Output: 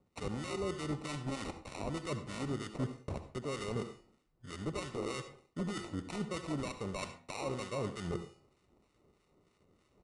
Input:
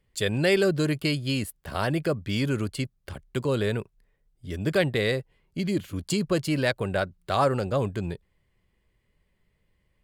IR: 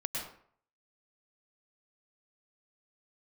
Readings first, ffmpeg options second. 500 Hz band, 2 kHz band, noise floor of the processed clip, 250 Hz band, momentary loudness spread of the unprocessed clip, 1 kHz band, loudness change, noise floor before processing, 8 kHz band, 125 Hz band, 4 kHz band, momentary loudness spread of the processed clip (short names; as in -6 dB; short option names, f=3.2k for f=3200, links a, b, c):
-13.5 dB, -15.5 dB, -74 dBFS, -11.5 dB, 11 LU, -11.0 dB, -13.0 dB, -72 dBFS, -8.5 dB, -12.5 dB, -13.5 dB, 6 LU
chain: -filter_complex "[0:a]highpass=f=170:p=1,equalizer=f=2k:t=o:w=0.28:g=5.5,bandreject=f=346.9:t=h:w=4,bandreject=f=693.8:t=h:w=4,bandreject=f=1.0407k:t=h:w=4,bandreject=f=1.3876k:t=h:w=4,bandreject=f=1.7345k:t=h:w=4,bandreject=f=2.0814k:t=h:w=4,bandreject=f=2.4283k:t=h:w=4,bandreject=f=2.7752k:t=h:w=4,bandreject=f=3.1221k:t=h:w=4,bandreject=f=3.469k:t=h:w=4,bandreject=f=3.8159k:t=h:w=4,bandreject=f=4.1628k:t=h:w=4,bandreject=f=4.5097k:t=h:w=4,bandreject=f=4.8566k:t=h:w=4,bandreject=f=5.2035k:t=h:w=4,bandreject=f=5.5504k:t=h:w=4,bandreject=f=5.8973k:t=h:w=4,bandreject=f=6.2442k:t=h:w=4,bandreject=f=6.5911k:t=h:w=4,bandreject=f=6.938k:t=h:w=4,bandreject=f=7.2849k:t=h:w=4,bandreject=f=7.6318k:t=h:w=4,bandreject=f=7.9787k:t=h:w=4,bandreject=f=8.3256k:t=h:w=4,bandreject=f=8.6725k:t=h:w=4,bandreject=f=9.0194k:t=h:w=4,bandreject=f=9.3663k:t=h:w=4,bandreject=f=9.7132k:t=h:w=4,bandreject=f=10.0601k:t=h:w=4,bandreject=f=10.407k:t=h:w=4,bandreject=f=10.7539k:t=h:w=4,bandreject=f=11.1008k:t=h:w=4,bandreject=f=11.4477k:t=h:w=4,bandreject=f=11.7946k:t=h:w=4,bandreject=f=12.1415k:t=h:w=4,bandreject=f=12.4884k:t=h:w=4,bandreject=f=12.8353k:t=h:w=4,bandreject=f=13.1822k:t=h:w=4,bandreject=f=13.5291k:t=h:w=4,alimiter=limit=-19.5dB:level=0:latency=1:release=253,areverse,acompressor=threshold=-40dB:ratio=6,areverse,acrusher=samples=27:mix=1:aa=0.000001,acrossover=split=1100[a][b];[a]aeval=exprs='val(0)*(1-0.7/2+0.7/2*cos(2*PI*3.2*n/s))':c=same[c];[b]aeval=exprs='val(0)*(1-0.7/2-0.7/2*cos(2*PI*3.2*n/s))':c=same[d];[c][d]amix=inputs=2:normalize=0,asplit=2[e][f];[1:a]atrim=start_sample=2205,asetrate=70560,aresample=44100[g];[f][g]afir=irnorm=-1:irlink=0,volume=-4.5dB[h];[e][h]amix=inputs=2:normalize=0,aresample=22050,aresample=44100,volume=4.5dB"